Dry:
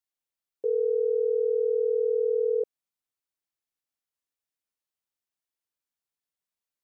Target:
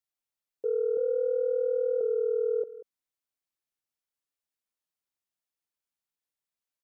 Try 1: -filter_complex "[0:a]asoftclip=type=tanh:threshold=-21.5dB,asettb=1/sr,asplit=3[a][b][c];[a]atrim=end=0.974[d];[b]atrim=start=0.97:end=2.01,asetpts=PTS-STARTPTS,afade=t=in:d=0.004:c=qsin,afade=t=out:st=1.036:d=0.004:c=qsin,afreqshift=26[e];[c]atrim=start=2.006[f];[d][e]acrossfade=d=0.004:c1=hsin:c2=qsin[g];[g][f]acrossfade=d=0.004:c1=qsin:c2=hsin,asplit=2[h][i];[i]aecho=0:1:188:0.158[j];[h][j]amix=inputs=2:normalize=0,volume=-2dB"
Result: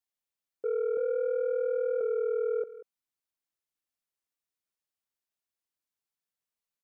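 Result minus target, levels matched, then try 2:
soft clip: distortion +14 dB
-filter_complex "[0:a]asoftclip=type=tanh:threshold=-13dB,asettb=1/sr,asplit=3[a][b][c];[a]atrim=end=0.974[d];[b]atrim=start=0.97:end=2.01,asetpts=PTS-STARTPTS,afade=t=in:d=0.004:c=qsin,afade=t=out:st=1.036:d=0.004:c=qsin,afreqshift=26[e];[c]atrim=start=2.006[f];[d][e]acrossfade=d=0.004:c1=hsin:c2=qsin[g];[g][f]acrossfade=d=0.004:c1=qsin:c2=hsin,asplit=2[h][i];[i]aecho=0:1:188:0.158[j];[h][j]amix=inputs=2:normalize=0,volume=-2dB"

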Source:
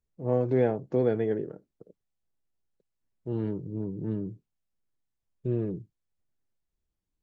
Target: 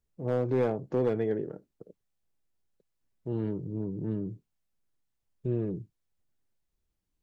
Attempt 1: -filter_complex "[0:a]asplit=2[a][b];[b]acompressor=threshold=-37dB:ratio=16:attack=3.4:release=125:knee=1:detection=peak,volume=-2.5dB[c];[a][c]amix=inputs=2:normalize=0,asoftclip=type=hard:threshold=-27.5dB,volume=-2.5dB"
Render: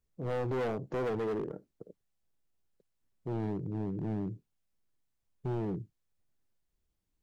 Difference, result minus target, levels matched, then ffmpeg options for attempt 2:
hard clip: distortion +12 dB
-filter_complex "[0:a]asplit=2[a][b];[b]acompressor=threshold=-37dB:ratio=16:attack=3.4:release=125:knee=1:detection=peak,volume=-2.5dB[c];[a][c]amix=inputs=2:normalize=0,asoftclip=type=hard:threshold=-17dB,volume=-2.5dB"

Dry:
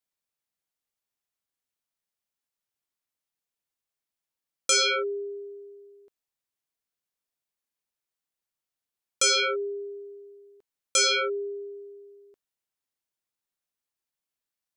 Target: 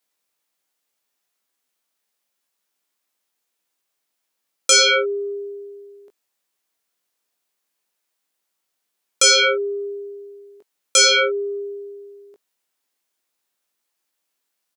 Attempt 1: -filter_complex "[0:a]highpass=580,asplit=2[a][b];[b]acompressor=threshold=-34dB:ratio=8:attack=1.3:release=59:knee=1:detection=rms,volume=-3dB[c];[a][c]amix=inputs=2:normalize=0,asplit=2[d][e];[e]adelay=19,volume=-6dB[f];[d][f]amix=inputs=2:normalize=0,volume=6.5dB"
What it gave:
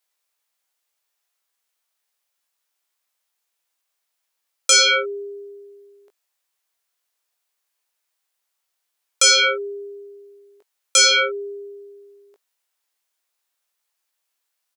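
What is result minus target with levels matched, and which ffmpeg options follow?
250 Hz band -6.5 dB
-filter_complex "[0:a]highpass=230,asplit=2[a][b];[b]acompressor=threshold=-34dB:ratio=8:attack=1.3:release=59:knee=1:detection=rms,volume=-3dB[c];[a][c]amix=inputs=2:normalize=0,asplit=2[d][e];[e]adelay=19,volume=-6dB[f];[d][f]amix=inputs=2:normalize=0,volume=6.5dB"

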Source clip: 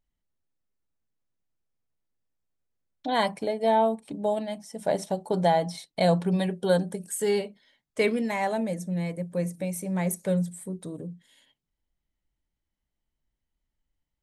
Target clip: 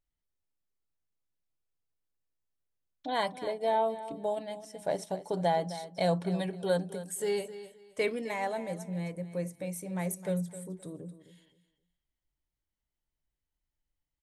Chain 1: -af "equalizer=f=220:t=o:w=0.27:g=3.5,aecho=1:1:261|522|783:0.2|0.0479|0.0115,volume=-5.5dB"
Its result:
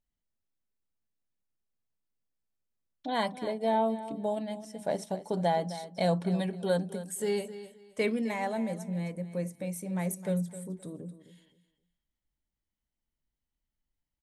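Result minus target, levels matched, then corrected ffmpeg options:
250 Hz band +3.0 dB
-af "equalizer=f=220:t=o:w=0.27:g=-8,aecho=1:1:261|522|783:0.2|0.0479|0.0115,volume=-5.5dB"

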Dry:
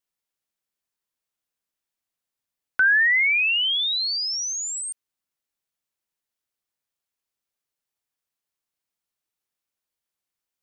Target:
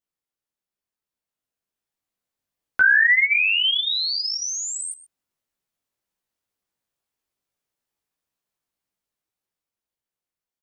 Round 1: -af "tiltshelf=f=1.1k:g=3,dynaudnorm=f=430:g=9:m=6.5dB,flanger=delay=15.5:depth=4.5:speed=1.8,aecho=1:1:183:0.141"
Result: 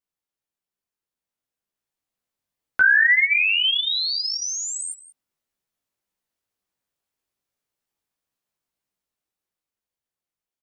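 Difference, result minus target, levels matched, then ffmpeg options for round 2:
echo 58 ms late
-af "tiltshelf=f=1.1k:g=3,dynaudnorm=f=430:g=9:m=6.5dB,flanger=delay=15.5:depth=4.5:speed=1.8,aecho=1:1:125:0.141"

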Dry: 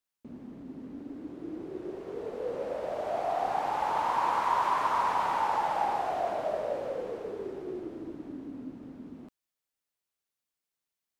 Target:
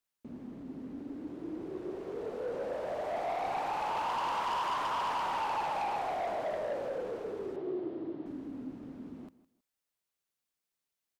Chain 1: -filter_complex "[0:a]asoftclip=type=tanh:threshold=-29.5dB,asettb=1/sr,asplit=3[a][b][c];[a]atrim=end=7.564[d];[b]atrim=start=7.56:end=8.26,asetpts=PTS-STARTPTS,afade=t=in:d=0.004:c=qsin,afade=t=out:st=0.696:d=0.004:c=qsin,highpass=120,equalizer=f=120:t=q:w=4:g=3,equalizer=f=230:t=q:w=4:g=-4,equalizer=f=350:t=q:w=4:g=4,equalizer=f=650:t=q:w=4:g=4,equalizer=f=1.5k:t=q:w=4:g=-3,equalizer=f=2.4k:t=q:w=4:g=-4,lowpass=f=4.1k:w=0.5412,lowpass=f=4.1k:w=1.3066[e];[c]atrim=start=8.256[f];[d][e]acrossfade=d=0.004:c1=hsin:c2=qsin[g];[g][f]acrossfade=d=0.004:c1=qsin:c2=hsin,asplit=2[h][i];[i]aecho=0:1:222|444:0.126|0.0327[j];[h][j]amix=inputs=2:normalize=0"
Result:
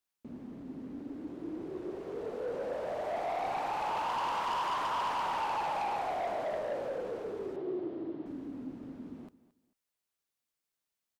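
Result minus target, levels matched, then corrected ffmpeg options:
echo 62 ms late
-filter_complex "[0:a]asoftclip=type=tanh:threshold=-29.5dB,asettb=1/sr,asplit=3[a][b][c];[a]atrim=end=7.564[d];[b]atrim=start=7.56:end=8.26,asetpts=PTS-STARTPTS,afade=t=in:d=0.004:c=qsin,afade=t=out:st=0.696:d=0.004:c=qsin,highpass=120,equalizer=f=120:t=q:w=4:g=3,equalizer=f=230:t=q:w=4:g=-4,equalizer=f=350:t=q:w=4:g=4,equalizer=f=650:t=q:w=4:g=4,equalizer=f=1.5k:t=q:w=4:g=-3,equalizer=f=2.4k:t=q:w=4:g=-4,lowpass=f=4.1k:w=0.5412,lowpass=f=4.1k:w=1.3066[e];[c]atrim=start=8.256[f];[d][e]acrossfade=d=0.004:c1=hsin:c2=qsin[g];[g][f]acrossfade=d=0.004:c1=qsin:c2=hsin,asplit=2[h][i];[i]aecho=0:1:160|320:0.126|0.0327[j];[h][j]amix=inputs=2:normalize=0"

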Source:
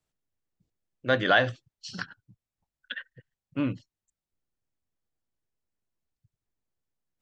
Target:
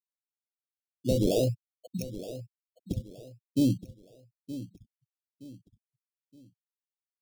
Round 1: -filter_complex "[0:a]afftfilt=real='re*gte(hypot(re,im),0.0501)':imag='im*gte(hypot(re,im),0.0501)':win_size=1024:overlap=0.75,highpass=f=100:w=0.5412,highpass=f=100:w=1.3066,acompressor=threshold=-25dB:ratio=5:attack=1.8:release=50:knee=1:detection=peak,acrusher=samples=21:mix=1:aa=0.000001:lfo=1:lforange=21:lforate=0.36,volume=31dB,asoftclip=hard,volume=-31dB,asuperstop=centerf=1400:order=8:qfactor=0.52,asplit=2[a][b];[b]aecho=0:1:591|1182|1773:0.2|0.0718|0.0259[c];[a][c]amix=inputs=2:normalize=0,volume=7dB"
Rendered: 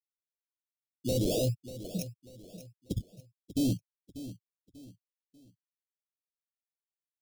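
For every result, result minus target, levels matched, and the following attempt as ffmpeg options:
overloaded stage: distortion +25 dB; echo 0.329 s early; 8000 Hz band +5.0 dB
-filter_complex "[0:a]afftfilt=real='re*gte(hypot(re,im),0.0501)':imag='im*gte(hypot(re,im),0.0501)':win_size=1024:overlap=0.75,highpass=f=100:w=0.5412,highpass=f=100:w=1.3066,acompressor=threshold=-25dB:ratio=5:attack=1.8:release=50:knee=1:detection=peak,acrusher=samples=21:mix=1:aa=0.000001:lfo=1:lforange=21:lforate=0.36,volume=19.5dB,asoftclip=hard,volume=-19.5dB,asuperstop=centerf=1400:order=8:qfactor=0.52,asplit=2[a][b];[b]aecho=0:1:591|1182|1773:0.2|0.0718|0.0259[c];[a][c]amix=inputs=2:normalize=0,volume=7dB"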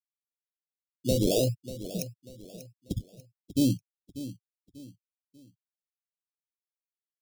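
echo 0.329 s early; 8000 Hz band +5.5 dB
-filter_complex "[0:a]afftfilt=real='re*gte(hypot(re,im),0.0501)':imag='im*gte(hypot(re,im),0.0501)':win_size=1024:overlap=0.75,highpass=f=100:w=0.5412,highpass=f=100:w=1.3066,acompressor=threshold=-25dB:ratio=5:attack=1.8:release=50:knee=1:detection=peak,acrusher=samples=21:mix=1:aa=0.000001:lfo=1:lforange=21:lforate=0.36,volume=19.5dB,asoftclip=hard,volume=-19.5dB,asuperstop=centerf=1400:order=8:qfactor=0.52,asplit=2[a][b];[b]aecho=0:1:920|1840|2760:0.2|0.0718|0.0259[c];[a][c]amix=inputs=2:normalize=0,volume=7dB"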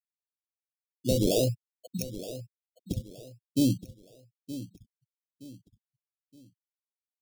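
8000 Hz band +5.5 dB
-filter_complex "[0:a]afftfilt=real='re*gte(hypot(re,im),0.0501)':imag='im*gte(hypot(re,im),0.0501)':win_size=1024:overlap=0.75,highpass=f=100:w=0.5412,highpass=f=100:w=1.3066,acompressor=threshold=-25dB:ratio=5:attack=1.8:release=50:knee=1:detection=peak,acrusher=samples=21:mix=1:aa=0.000001:lfo=1:lforange=21:lforate=0.36,volume=19.5dB,asoftclip=hard,volume=-19.5dB,asuperstop=centerf=1400:order=8:qfactor=0.52,highshelf=f=2.9k:g=-7,asplit=2[a][b];[b]aecho=0:1:920|1840|2760:0.2|0.0718|0.0259[c];[a][c]amix=inputs=2:normalize=0,volume=7dB"

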